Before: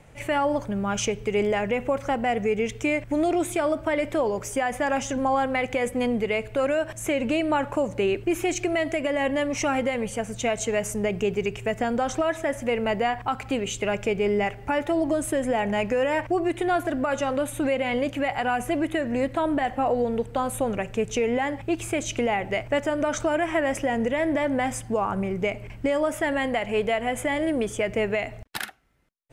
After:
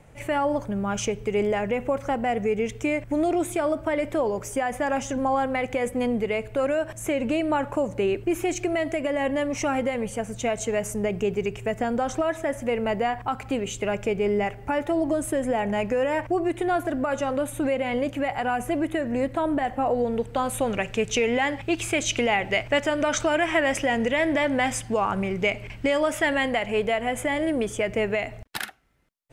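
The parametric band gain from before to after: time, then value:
parametric band 3,500 Hz 2.3 octaves
0:19.85 −3.5 dB
0:20.75 +7.5 dB
0:26.24 +7.5 dB
0:26.78 +0.5 dB

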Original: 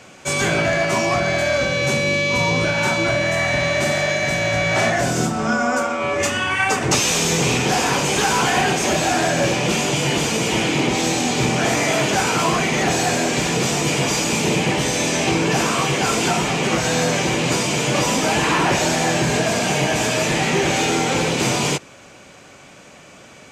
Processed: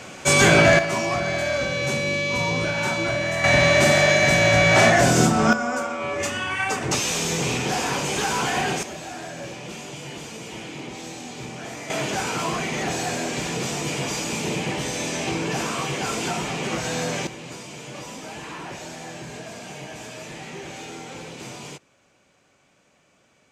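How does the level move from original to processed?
+4.5 dB
from 0:00.79 −5 dB
from 0:03.44 +3 dB
from 0:05.53 −6 dB
from 0:08.83 −16.5 dB
from 0:11.90 −7.5 dB
from 0:17.27 −18 dB

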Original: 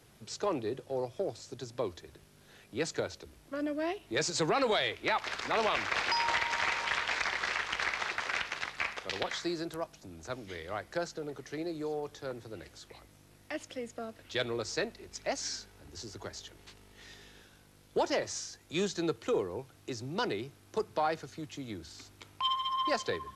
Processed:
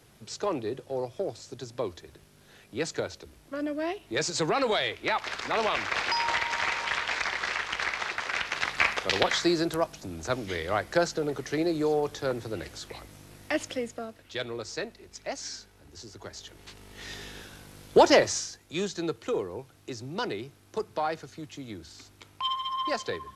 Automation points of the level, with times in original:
0:08.33 +2.5 dB
0:08.76 +10 dB
0:13.67 +10 dB
0:14.24 −1 dB
0:16.17 −1 dB
0:17.16 +12 dB
0:18.18 +12 dB
0:18.65 +1 dB

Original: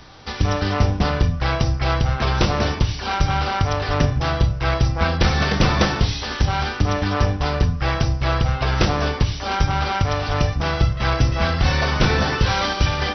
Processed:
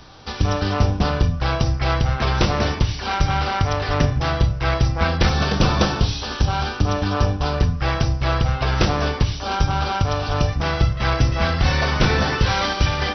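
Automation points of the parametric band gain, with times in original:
parametric band 2,000 Hz 0.33 octaves
−5.5 dB
from 0:01.66 +0.5 dB
from 0:05.29 −9.5 dB
from 0:07.58 −1.5 dB
from 0:09.36 −9 dB
from 0:10.49 +0.5 dB

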